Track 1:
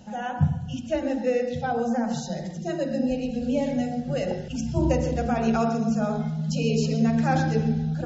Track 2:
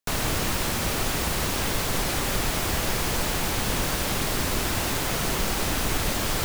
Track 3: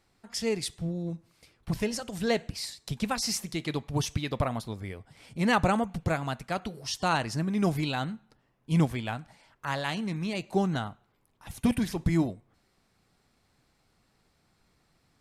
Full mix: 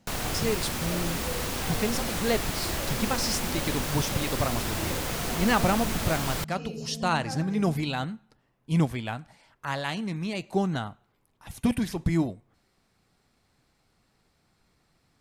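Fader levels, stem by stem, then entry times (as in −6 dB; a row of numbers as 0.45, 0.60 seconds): −14.5, −5.0, +0.5 decibels; 0.00, 0.00, 0.00 seconds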